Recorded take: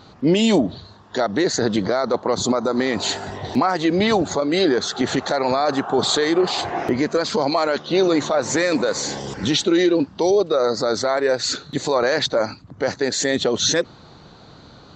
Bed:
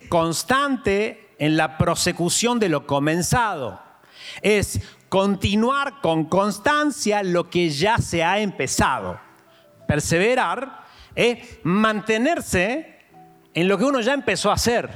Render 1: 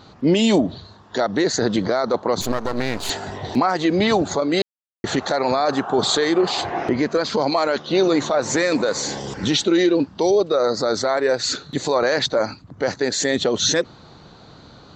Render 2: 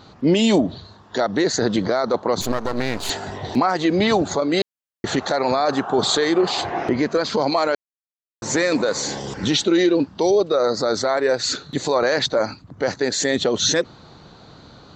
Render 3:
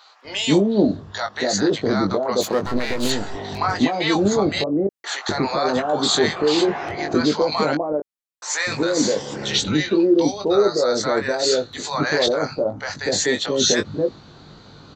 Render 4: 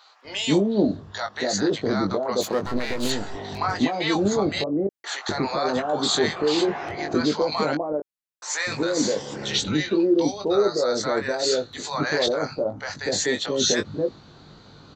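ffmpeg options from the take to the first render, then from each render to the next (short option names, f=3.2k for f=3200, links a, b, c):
-filter_complex "[0:a]asettb=1/sr,asplit=3[a][b][c];[a]atrim=end=2.414[d];[b]atrim=start=2.41:end=3.1,asetpts=PTS-STARTPTS,afade=t=in:d=0.004:c=qsin,afade=t=out:st=0.686:d=0.004:c=qsin,aeval=exprs='max(val(0),0)':c=same[e];[c]atrim=start=3.096[f];[d][e]acrossfade=d=0.004:c1=hsin:c2=qsin[g];[g][f]acrossfade=d=0.004:c1=qsin:c2=hsin,asettb=1/sr,asplit=3[h][i][j];[h]atrim=end=6.634[k];[i]atrim=start=6.63:end=7.4,asetpts=PTS-STARTPTS,afade=t=in:d=0.004:c=qsin,afade=t=out:st=0.766:d=0.004:c=qsin,lowpass=6k[l];[j]atrim=start=7.396[m];[k][l]acrossfade=d=0.004:c1=hsin:c2=qsin[n];[n][m]acrossfade=d=0.004:c1=qsin:c2=hsin,asplit=3[o][p][q];[o]atrim=end=4.62,asetpts=PTS-STARTPTS,afade=t=out:st=4.616:d=0.004:c=hsin[r];[p]atrim=start=4.62:end=5.04,asetpts=PTS-STARTPTS,volume=0[s];[q]atrim=start=5.04,asetpts=PTS-STARTPTS,afade=t=in:d=0.004:c=hsin[t];[r][s][t]concat=n=3:v=0:a=1"
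-filter_complex "[0:a]asplit=3[a][b][c];[a]atrim=end=7.75,asetpts=PTS-STARTPTS,afade=t=out:st=7.746:d=0.004:c=hsin[d];[b]atrim=start=7.75:end=8.42,asetpts=PTS-STARTPTS,volume=0[e];[c]atrim=start=8.42,asetpts=PTS-STARTPTS,afade=t=in:d=0.004:c=hsin[f];[d][e][f]concat=n=3:v=0:a=1"
-filter_complex "[0:a]asplit=2[a][b];[b]adelay=20,volume=-6dB[c];[a][c]amix=inputs=2:normalize=0,acrossover=split=750[d][e];[d]adelay=250[f];[f][e]amix=inputs=2:normalize=0"
-af "volume=-3.5dB"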